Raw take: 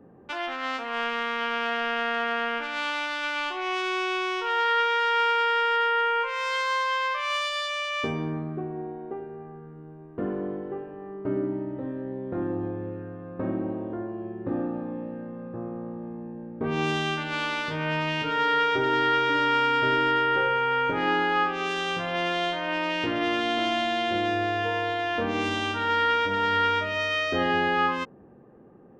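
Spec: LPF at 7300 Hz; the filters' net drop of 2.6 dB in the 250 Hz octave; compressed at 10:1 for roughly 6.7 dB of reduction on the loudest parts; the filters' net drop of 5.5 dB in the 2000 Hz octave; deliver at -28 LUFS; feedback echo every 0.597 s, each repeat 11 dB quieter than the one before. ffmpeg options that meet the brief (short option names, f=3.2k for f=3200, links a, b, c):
-af "lowpass=7.3k,equalizer=f=250:t=o:g=-3.5,equalizer=f=2k:t=o:g=-7.5,acompressor=threshold=-28dB:ratio=10,aecho=1:1:597|1194|1791:0.282|0.0789|0.0221,volume=5.5dB"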